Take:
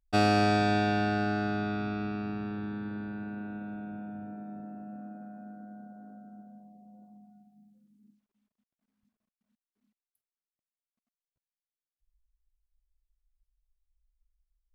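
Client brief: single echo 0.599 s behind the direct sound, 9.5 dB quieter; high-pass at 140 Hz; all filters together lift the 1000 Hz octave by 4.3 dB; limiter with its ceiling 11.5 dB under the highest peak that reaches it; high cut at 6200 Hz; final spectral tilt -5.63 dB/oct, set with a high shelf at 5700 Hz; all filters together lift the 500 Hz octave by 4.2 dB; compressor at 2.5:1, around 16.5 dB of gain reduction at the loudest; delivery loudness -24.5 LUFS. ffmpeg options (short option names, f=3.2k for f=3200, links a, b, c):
-af "highpass=140,lowpass=6.2k,equalizer=f=500:t=o:g=4.5,equalizer=f=1k:t=o:g=4,highshelf=f=5.7k:g=5.5,acompressor=threshold=-44dB:ratio=2.5,alimiter=level_in=12.5dB:limit=-24dB:level=0:latency=1,volume=-12.5dB,aecho=1:1:599:0.335,volume=21.5dB"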